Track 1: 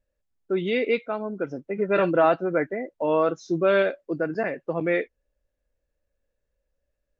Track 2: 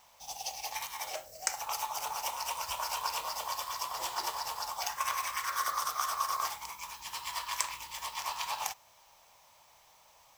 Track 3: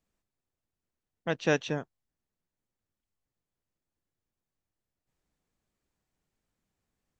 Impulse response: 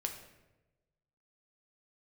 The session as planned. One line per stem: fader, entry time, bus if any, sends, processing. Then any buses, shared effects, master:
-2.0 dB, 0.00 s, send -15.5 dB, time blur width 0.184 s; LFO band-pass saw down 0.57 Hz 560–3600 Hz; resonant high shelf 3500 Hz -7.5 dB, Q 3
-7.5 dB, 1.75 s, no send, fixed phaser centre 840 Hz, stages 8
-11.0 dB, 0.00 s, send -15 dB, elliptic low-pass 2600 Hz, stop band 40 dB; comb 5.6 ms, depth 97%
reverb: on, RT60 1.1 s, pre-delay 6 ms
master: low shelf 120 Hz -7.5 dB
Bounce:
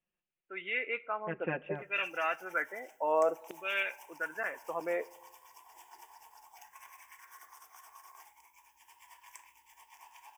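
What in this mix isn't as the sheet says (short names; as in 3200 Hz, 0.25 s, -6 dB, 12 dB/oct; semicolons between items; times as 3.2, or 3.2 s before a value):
stem 1: missing time blur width 0.184 s; stem 2 -7.5 dB -> -16.5 dB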